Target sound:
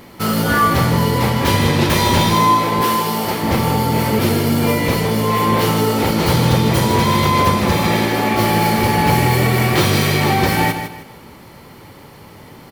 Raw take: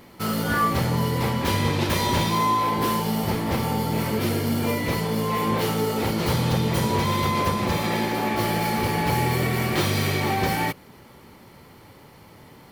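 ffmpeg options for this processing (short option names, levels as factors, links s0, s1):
-filter_complex "[0:a]asettb=1/sr,asplit=3[s0][s1][s2];[s0]atrim=end=2.814[s3];[s1]atrim=start=2.81:end=3.43,asetpts=PTS-STARTPTS,afade=t=in:d=0.004:c=qsin,afade=t=out:st=0.616:d=0.004:c=qsin,highpass=f=310:p=1[s4];[s2]atrim=start=3.426[s5];[s3][s4]acrossfade=d=0.004:c1=hsin:c2=qsin[s6];[s6][s5]acrossfade=d=0.004:c1=qsin:c2=hsin,aecho=1:1:155|310|465|620:0.376|0.113|0.0338|0.0101,volume=2.37"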